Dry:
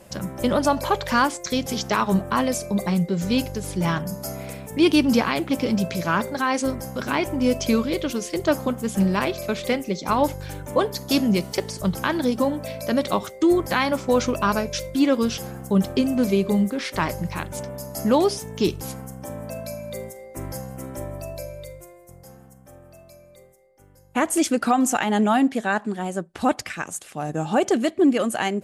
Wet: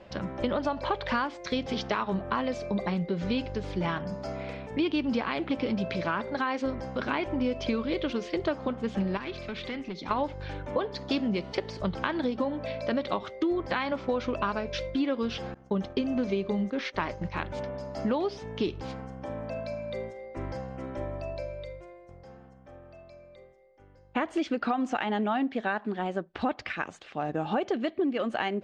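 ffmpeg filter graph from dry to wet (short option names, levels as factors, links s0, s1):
-filter_complex "[0:a]asettb=1/sr,asplit=3[s0][s1][s2];[s0]atrim=end=9.174[s3];[s1]atrim=start=9.17:end=10.11,asetpts=PTS-STARTPTS,afade=t=in:d=0.004:c=qsin,afade=t=out:st=0.936:d=0.004:c=qsin,equalizer=f=620:t=o:w=1:g=-9,acompressor=threshold=0.0355:ratio=3:attack=3.2:release=140:knee=1:detection=peak,volume=25.1,asoftclip=hard,volume=0.0398[s4];[s2]atrim=start=10.106[s5];[s3][s4]acrossfade=d=0.004:c1=hsin:c2=qsin[s6];[s6][s5]acrossfade=d=0.004:c1=qsin:c2=hsin,asettb=1/sr,asplit=3[s7][s8][s9];[s7]atrim=end=15.544[s10];[s8]atrim=start=15.54:end=17.34,asetpts=PTS-STARTPTS,afade=t=in:d=0.004:c=qsin,afade=t=out:st=1.796:d=0.004:c=qsin,equalizer=f=6200:t=o:w=0.25:g=8.5,bandreject=f=60:t=h:w=6,bandreject=f=120:t=h:w=6,agate=range=0.0224:threshold=0.0447:ratio=3:release=100:detection=peak[s11];[s9]atrim=start=17.336[s12];[s10][s11]acrossfade=d=0.004:c1=hsin:c2=qsin[s13];[s13][s12]acrossfade=d=0.004:c1=qsin:c2=hsin,lowpass=f=4000:w=0.5412,lowpass=f=4000:w=1.3066,equalizer=f=150:t=o:w=0.93:g=-6,acompressor=threshold=0.0631:ratio=6,volume=0.891"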